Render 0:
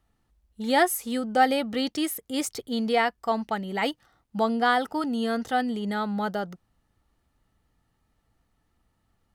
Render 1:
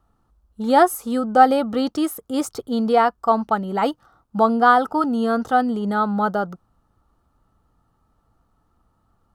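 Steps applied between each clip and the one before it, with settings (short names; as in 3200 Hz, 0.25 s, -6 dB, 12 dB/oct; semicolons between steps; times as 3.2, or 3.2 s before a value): resonant high shelf 1600 Hz -6.5 dB, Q 3; gain +6 dB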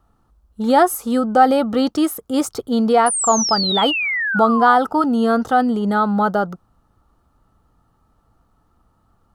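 painted sound fall, 3.06–4.76, 820–10000 Hz -25 dBFS; in parallel at +1 dB: limiter -13 dBFS, peak gain reduction 12 dB; on the sum: gain -2.5 dB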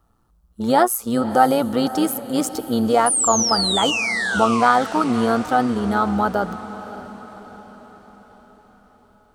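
high shelf 5800 Hz +6 dB; AM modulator 120 Hz, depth 40%; diffused feedback echo 0.566 s, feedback 52%, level -14 dB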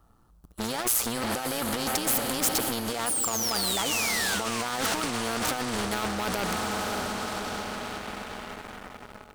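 negative-ratio compressor -24 dBFS, ratio -1; sample leveller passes 3; spectral compressor 2:1; gain -4 dB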